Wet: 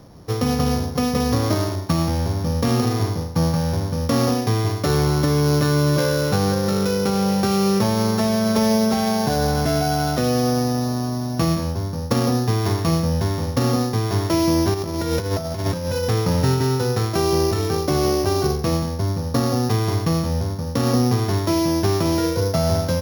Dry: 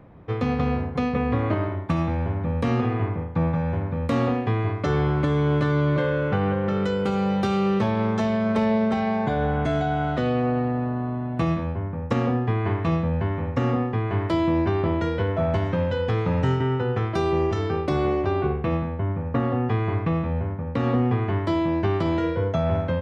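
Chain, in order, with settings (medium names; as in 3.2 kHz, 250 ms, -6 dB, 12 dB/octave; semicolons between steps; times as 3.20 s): sorted samples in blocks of 8 samples; 14.74–16.05 s: compressor with a negative ratio -26 dBFS, ratio -0.5; trim +3.5 dB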